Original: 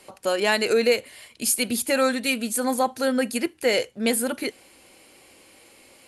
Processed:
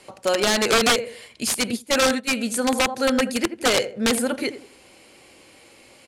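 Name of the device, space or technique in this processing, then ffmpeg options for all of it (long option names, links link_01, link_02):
overflowing digital effects unit: -filter_complex "[0:a]equalizer=frequency=130:width_type=o:width=0.31:gain=4.5,asplit=2[link_01][link_02];[link_02]adelay=84,lowpass=frequency=1200:poles=1,volume=-11dB,asplit=2[link_03][link_04];[link_04]adelay=84,lowpass=frequency=1200:poles=1,volume=0.37,asplit=2[link_05][link_06];[link_06]adelay=84,lowpass=frequency=1200:poles=1,volume=0.37,asplit=2[link_07][link_08];[link_08]adelay=84,lowpass=frequency=1200:poles=1,volume=0.37[link_09];[link_01][link_03][link_05][link_07][link_09]amix=inputs=5:normalize=0,aeval=exprs='(mod(5.01*val(0)+1,2)-1)/5.01':channel_layout=same,lowpass=8800,asplit=3[link_10][link_11][link_12];[link_10]afade=type=out:start_time=1.71:duration=0.02[link_13];[link_11]agate=range=-16dB:threshold=-24dB:ratio=16:detection=peak,afade=type=in:start_time=1.71:duration=0.02,afade=type=out:start_time=2.27:duration=0.02[link_14];[link_12]afade=type=in:start_time=2.27:duration=0.02[link_15];[link_13][link_14][link_15]amix=inputs=3:normalize=0,volume=2.5dB"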